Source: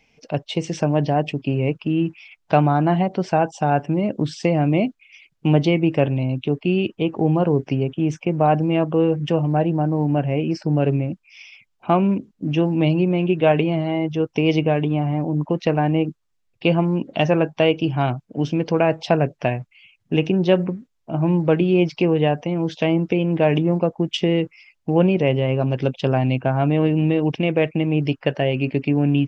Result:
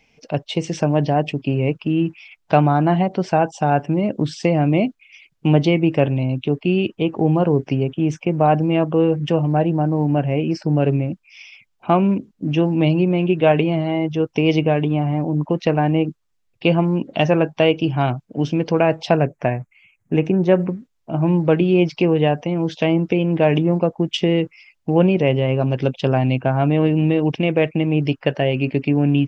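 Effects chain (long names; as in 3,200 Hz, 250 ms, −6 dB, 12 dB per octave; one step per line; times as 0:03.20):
0:19.25–0:20.60: flat-topped bell 3,900 Hz −11 dB 1.2 octaves
level +1.5 dB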